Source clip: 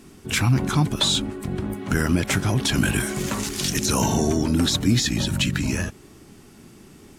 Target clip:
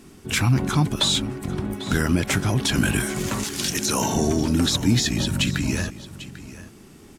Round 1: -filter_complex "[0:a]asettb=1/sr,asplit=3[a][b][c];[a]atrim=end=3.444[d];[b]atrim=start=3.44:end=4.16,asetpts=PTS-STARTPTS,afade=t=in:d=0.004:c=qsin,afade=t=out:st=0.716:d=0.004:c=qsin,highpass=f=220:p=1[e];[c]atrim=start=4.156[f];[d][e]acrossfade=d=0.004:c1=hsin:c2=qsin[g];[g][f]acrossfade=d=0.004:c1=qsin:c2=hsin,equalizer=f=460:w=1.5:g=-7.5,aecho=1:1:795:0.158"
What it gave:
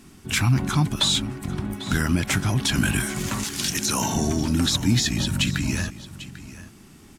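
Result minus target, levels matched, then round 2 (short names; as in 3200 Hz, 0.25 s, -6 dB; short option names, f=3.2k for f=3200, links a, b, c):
500 Hz band -4.5 dB
-filter_complex "[0:a]asettb=1/sr,asplit=3[a][b][c];[a]atrim=end=3.444[d];[b]atrim=start=3.44:end=4.16,asetpts=PTS-STARTPTS,afade=t=in:d=0.004:c=qsin,afade=t=out:st=0.716:d=0.004:c=qsin,highpass=f=220:p=1[e];[c]atrim=start=4.156[f];[d][e]acrossfade=d=0.004:c1=hsin:c2=qsin[g];[g][f]acrossfade=d=0.004:c1=qsin:c2=hsin,aecho=1:1:795:0.158"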